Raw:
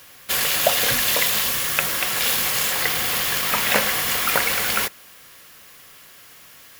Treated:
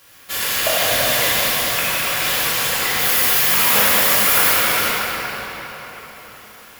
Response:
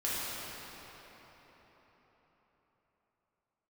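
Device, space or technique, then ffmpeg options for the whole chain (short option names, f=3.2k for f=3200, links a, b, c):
cathedral: -filter_complex "[0:a]asettb=1/sr,asplit=3[a][b][c];[a]atrim=end=2.994[d];[b]atrim=start=2.99:end=4.51,asetpts=PTS-STARTPTS,afade=t=in:d=0.004:c=qsin,afade=t=out:st=1.516:d=0.004:c=qsin,highshelf=f=6.7k:g=8.5[e];[c]atrim=start=4.506[f];[d][e]acrossfade=d=0.004:c1=hsin:c2=qsin[g];[g][f]acrossfade=d=0.004:c1=qsin:c2=hsin[h];[1:a]atrim=start_sample=2205[i];[h][i]afir=irnorm=-1:irlink=0,volume=-4dB"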